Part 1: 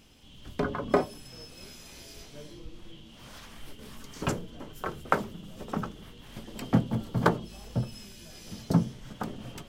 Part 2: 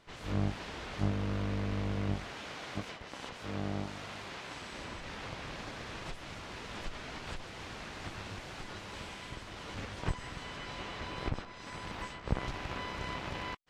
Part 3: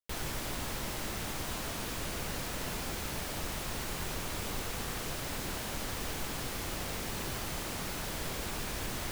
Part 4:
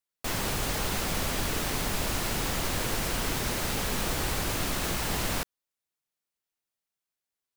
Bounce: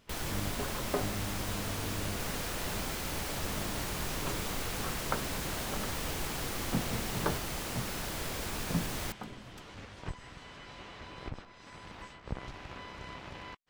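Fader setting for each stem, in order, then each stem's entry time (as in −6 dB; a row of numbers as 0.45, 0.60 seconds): −9.5, −6.0, 0.0, −13.5 decibels; 0.00, 0.00, 0.00, 1.95 seconds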